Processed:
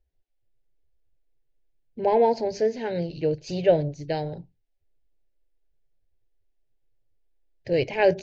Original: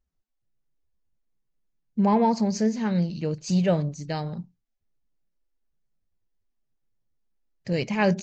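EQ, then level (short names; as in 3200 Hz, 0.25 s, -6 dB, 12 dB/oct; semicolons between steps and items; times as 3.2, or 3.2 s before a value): air absorption 230 m; bell 1500 Hz +3.5 dB 0.38 oct; fixed phaser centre 490 Hz, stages 4; +7.0 dB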